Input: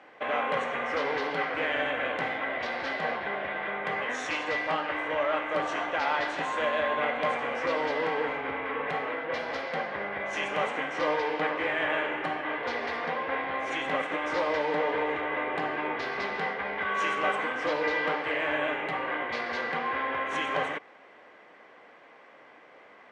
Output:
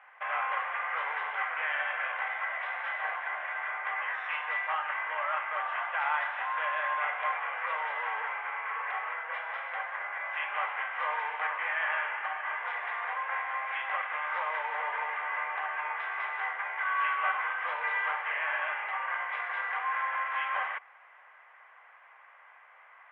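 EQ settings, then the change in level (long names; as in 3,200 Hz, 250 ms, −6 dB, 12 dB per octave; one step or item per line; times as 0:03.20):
Savitzky-Golay smoothing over 25 samples
high-pass filter 920 Hz 24 dB per octave
high-frequency loss of the air 400 metres
+3.5 dB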